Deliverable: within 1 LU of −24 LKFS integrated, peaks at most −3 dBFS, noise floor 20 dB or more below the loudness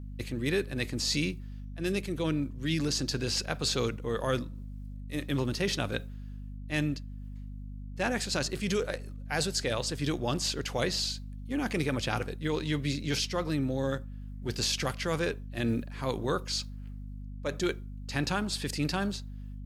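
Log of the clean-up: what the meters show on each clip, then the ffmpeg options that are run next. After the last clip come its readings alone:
mains hum 50 Hz; hum harmonics up to 250 Hz; level of the hum −38 dBFS; integrated loudness −31.5 LKFS; sample peak −12.5 dBFS; target loudness −24.0 LKFS
→ -af "bandreject=frequency=50:width_type=h:width=4,bandreject=frequency=100:width_type=h:width=4,bandreject=frequency=150:width_type=h:width=4,bandreject=frequency=200:width_type=h:width=4,bandreject=frequency=250:width_type=h:width=4"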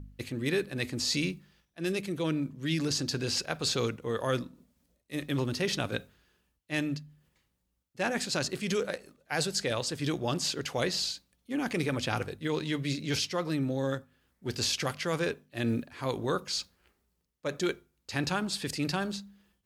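mains hum none found; integrated loudness −32.0 LKFS; sample peak −12.5 dBFS; target loudness −24.0 LKFS
→ -af "volume=8dB"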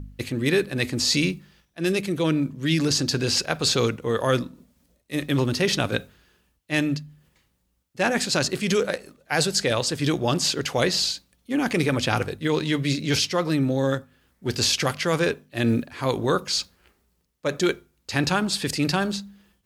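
integrated loudness −24.0 LKFS; sample peak −4.5 dBFS; background noise floor −70 dBFS

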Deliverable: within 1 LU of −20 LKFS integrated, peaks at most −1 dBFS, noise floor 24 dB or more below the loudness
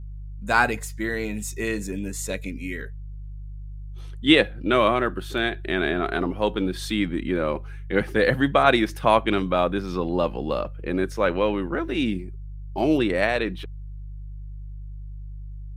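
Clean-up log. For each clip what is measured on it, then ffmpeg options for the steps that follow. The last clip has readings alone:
mains hum 50 Hz; hum harmonics up to 150 Hz; level of the hum −33 dBFS; integrated loudness −24.0 LKFS; sample peak −2.0 dBFS; target loudness −20.0 LKFS
→ -af "bandreject=frequency=50:width_type=h:width=4,bandreject=frequency=100:width_type=h:width=4,bandreject=frequency=150:width_type=h:width=4"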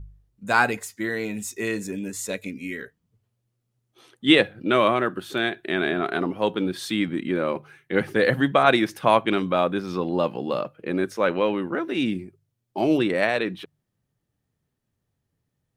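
mains hum none found; integrated loudness −24.0 LKFS; sample peak −2.5 dBFS; target loudness −20.0 LKFS
→ -af "volume=4dB,alimiter=limit=-1dB:level=0:latency=1"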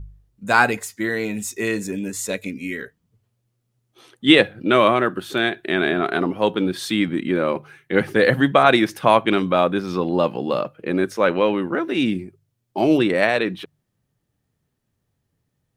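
integrated loudness −20.0 LKFS; sample peak −1.0 dBFS; background noise floor −74 dBFS

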